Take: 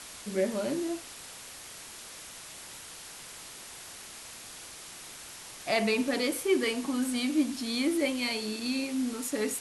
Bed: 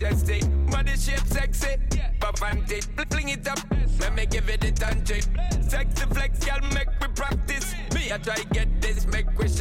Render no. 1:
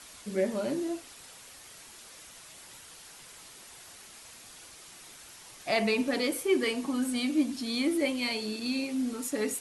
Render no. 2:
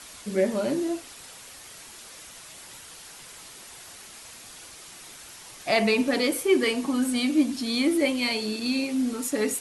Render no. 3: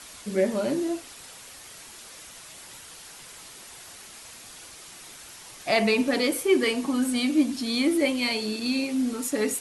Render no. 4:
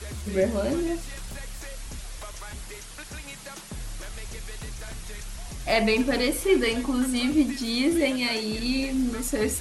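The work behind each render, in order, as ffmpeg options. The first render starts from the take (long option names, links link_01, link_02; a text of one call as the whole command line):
ffmpeg -i in.wav -af "afftdn=noise_reduction=6:noise_floor=-46" out.wav
ffmpeg -i in.wav -af "volume=5dB" out.wav
ffmpeg -i in.wav -af anull out.wav
ffmpeg -i in.wav -i bed.wav -filter_complex "[1:a]volume=-14dB[link_01];[0:a][link_01]amix=inputs=2:normalize=0" out.wav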